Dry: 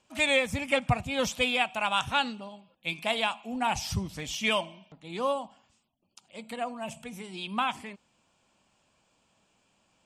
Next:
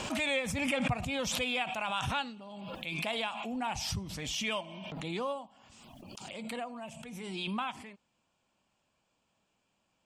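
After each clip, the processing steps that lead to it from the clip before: high shelf 8900 Hz -6.5 dB; backwards sustainer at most 24 dB/s; gain -7.5 dB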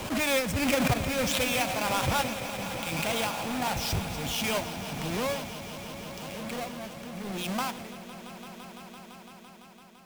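half-waves squared off; swelling echo 0.169 s, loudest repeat 5, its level -13.5 dB; three-band expander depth 40%

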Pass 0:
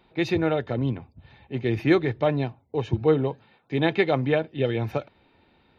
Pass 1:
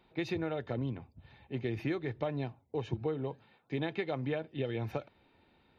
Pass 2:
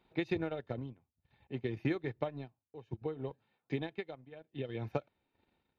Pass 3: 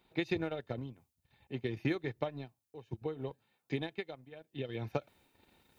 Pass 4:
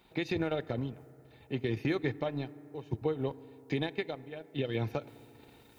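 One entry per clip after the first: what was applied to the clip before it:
compressor 10:1, threshold -24 dBFS, peak gain reduction 11 dB; gain -6 dB
tremolo triangle 0.64 Hz, depth 90%; transient shaper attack +5 dB, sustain -12 dB; gain -1 dB
high shelf 4100 Hz +10 dB; reverse; upward compressor, threshold -57 dBFS; reverse
limiter -28 dBFS, peak gain reduction 9 dB; reverb RT60 3.2 s, pre-delay 4 ms, DRR 18 dB; gain +7 dB

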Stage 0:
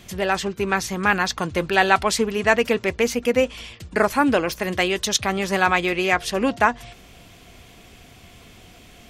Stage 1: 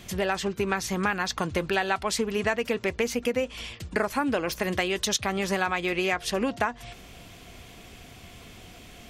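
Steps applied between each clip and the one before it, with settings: compressor 5:1, threshold -23 dBFS, peak gain reduction 11.5 dB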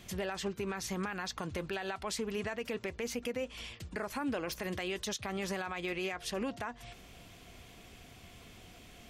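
limiter -20 dBFS, peak gain reduction 9.5 dB; gain -7 dB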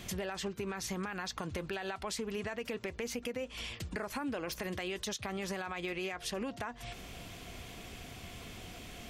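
compressor 2.5:1, threshold -45 dBFS, peak gain reduction 9.5 dB; gain +6.5 dB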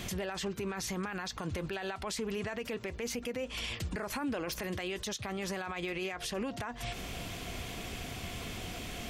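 limiter -34.5 dBFS, peak gain reduction 9.5 dB; gain +6.5 dB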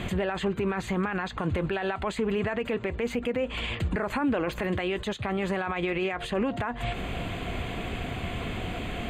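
running mean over 8 samples; gain +9 dB

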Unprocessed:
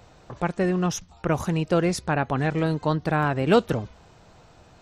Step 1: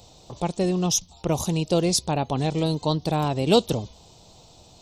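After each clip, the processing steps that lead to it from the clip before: EQ curve 930 Hz 0 dB, 1600 Hz -16 dB, 3600 Hz +10 dB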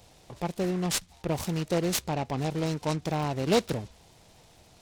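noise-modulated delay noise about 1400 Hz, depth 0.047 ms; gain -5.5 dB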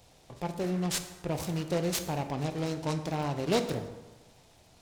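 plate-style reverb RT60 1.2 s, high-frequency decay 0.6×, DRR 7 dB; gain -3.5 dB

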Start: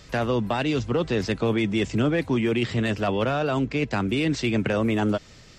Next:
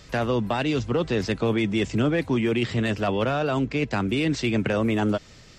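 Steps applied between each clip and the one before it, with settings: nothing audible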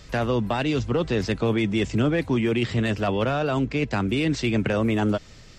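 low shelf 63 Hz +7.5 dB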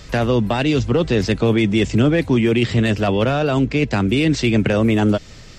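dynamic EQ 1100 Hz, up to -4 dB, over -37 dBFS, Q 1; gain +7 dB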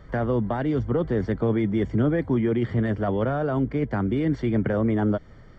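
polynomial smoothing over 41 samples; gain -6.5 dB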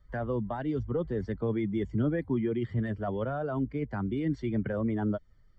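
per-bin expansion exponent 1.5; gain -4.5 dB

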